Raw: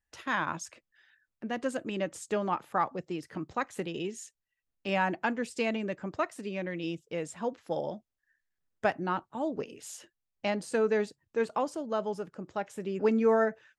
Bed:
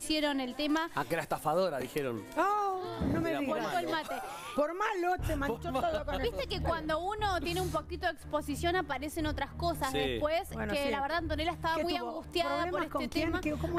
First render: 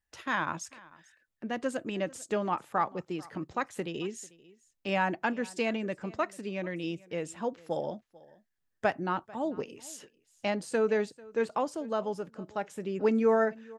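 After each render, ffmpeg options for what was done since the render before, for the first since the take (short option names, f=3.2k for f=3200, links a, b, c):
-af "aecho=1:1:443:0.075"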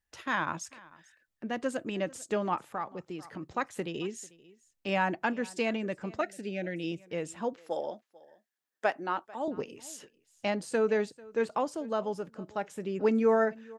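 -filter_complex "[0:a]asplit=3[a][b][c];[a]afade=t=out:st=2.63:d=0.02[d];[b]acompressor=threshold=-42dB:ratio=1.5:attack=3.2:release=140:knee=1:detection=peak,afade=t=in:st=2.63:d=0.02,afade=t=out:st=3.43:d=0.02[e];[c]afade=t=in:st=3.43:d=0.02[f];[d][e][f]amix=inputs=3:normalize=0,asettb=1/sr,asplit=3[g][h][i];[g]atrim=end=6.214[j];[h]atrim=start=6.21:end=6.92,asetpts=PTS-STARTPTS,afade=t=in:d=0.004:c=qsin,afade=t=out:st=0.706:d=0.004:c=qsin,asuperstop=centerf=1100:order=12:qfactor=2.2[k];[i]atrim=start=6.916[l];[j][k]acrossfade=d=0.004:c1=hsin:c2=qsin[m];[m][l]acrossfade=d=0.004:c1=qsin:c2=hsin,asettb=1/sr,asplit=3[n][o][p];[n]atrim=end=7.564[q];[o]atrim=start=7.56:end=9.48,asetpts=PTS-STARTPTS,afade=t=in:d=0.004:c=qsin,afade=t=out:st=1.916:d=0.004:c=qsin,highpass=350[r];[p]atrim=start=9.476[s];[q][r]acrossfade=d=0.004:c1=hsin:c2=qsin[t];[t][s]acrossfade=d=0.004:c1=qsin:c2=hsin"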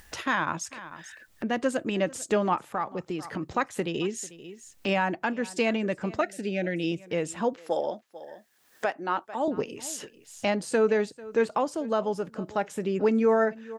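-filter_complex "[0:a]asplit=2[a][b];[b]acompressor=mode=upward:threshold=-30dB:ratio=2.5,volume=-0.5dB[c];[a][c]amix=inputs=2:normalize=0,alimiter=limit=-14dB:level=0:latency=1:release=419"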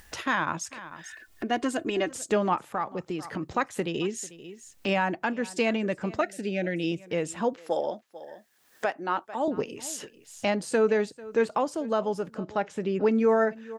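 -filter_complex "[0:a]asettb=1/sr,asplit=3[a][b][c];[a]atrim=end=1.044[d];[b]atrim=start=1.04:end=2.11,asetpts=PTS-STARTPTS,afade=t=in:d=0.004:c=qsin,afade=t=out:st=1.066:d=0.004:c=qsin,aecho=1:1:2.8:0.65,atrim=end_sample=47187[e];[c]atrim=start=2.106[f];[d][e]acrossfade=d=0.004:c1=hsin:c2=qsin[g];[g][f]acrossfade=d=0.004:c1=qsin:c2=hsin,asettb=1/sr,asplit=3[h][i][j];[h]atrim=end=12.384[k];[i]atrim=start=12.38:end=13.2,asetpts=PTS-STARTPTS,afade=t=in:d=0.004:c=qsin,afade=t=out:st=0.816:d=0.004:c=qsin,lowpass=5.7k[l];[j]atrim=start=13.196[m];[k][l]acrossfade=d=0.004:c1=hsin:c2=qsin[n];[n][m]acrossfade=d=0.004:c1=qsin:c2=hsin"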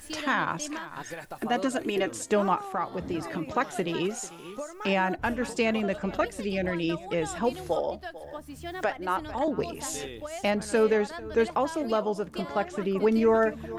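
-filter_complex "[1:a]volume=-7dB[a];[0:a][a]amix=inputs=2:normalize=0"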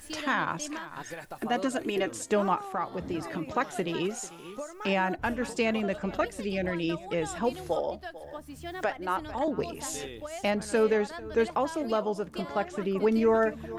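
-af "volume=-1.5dB"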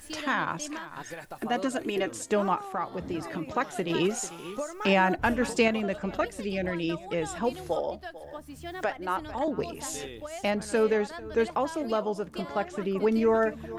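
-filter_complex "[0:a]asplit=3[a][b][c];[a]atrim=end=3.902[d];[b]atrim=start=3.898:end=5.682,asetpts=PTS-STARTPTS,volume=4.5dB[e];[c]atrim=start=5.678[f];[d][e]acrossfade=d=0.004:c1=hsin:c2=hsin[g];[g][f]acrossfade=d=0.004:c1=hsin:c2=hsin"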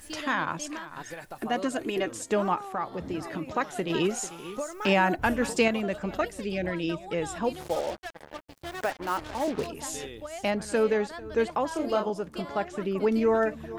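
-filter_complex "[0:a]asettb=1/sr,asplit=3[a][b][c];[a]atrim=end=4.604[d];[b]atrim=start=4.6:end=6.32,asetpts=PTS-STARTPTS,afade=t=in:d=0.004:c=qsin,afade=t=out:st=1.716:d=0.004:c=qsin,highshelf=f=10k:g=7[e];[c]atrim=start=6.316[f];[d][e]acrossfade=d=0.004:c1=hsin:c2=qsin[g];[g][f]acrossfade=d=0.004:c1=qsin:c2=hsin,asplit=3[h][i][j];[h]afade=t=out:st=7.59:d=0.02[k];[i]acrusher=bits=5:mix=0:aa=0.5,afade=t=in:st=7.59:d=0.02,afade=t=out:st=9.66:d=0.02[l];[j]afade=t=in:st=9.66:d=0.02[m];[k][l][m]amix=inputs=3:normalize=0,asettb=1/sr,asplit=3[n][o][p];[n]atrim=end=11.684[q];[o]atrim=start=11.68:end=12.1,asetpts=PTS-STARTPTS,afade=t=in:d=0.004:c=qsin,afade=t=out:st=0.416:d=0.004:c=qsin,asplit=2[r][s];[s]adelay=29,volume=-3dB[t];[r][t]amix=inputs=2:normalize=0,atrim=end_sample=18522[u];[p]atrim=start=12.096[v];[q][u]acrossfade=d=0.004:c1=hsin:c2=qsin[w];[w][v]acrossfade=d=0.004:c1=qsin:c2=hsin"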